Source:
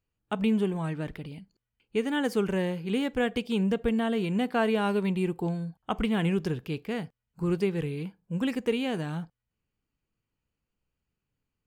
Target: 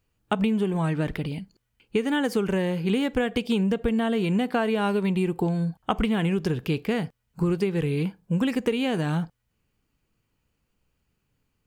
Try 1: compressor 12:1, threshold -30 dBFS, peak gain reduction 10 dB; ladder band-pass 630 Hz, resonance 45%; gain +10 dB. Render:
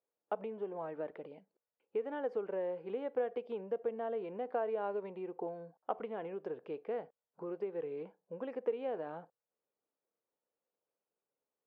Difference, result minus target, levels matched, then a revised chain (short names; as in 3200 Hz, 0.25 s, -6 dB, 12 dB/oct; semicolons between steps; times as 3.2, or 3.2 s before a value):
500 Hz band +5.5 dB
compressor 12:1, threshold -30 dBFS, peak gain reduction 10 dB; gain +10 dB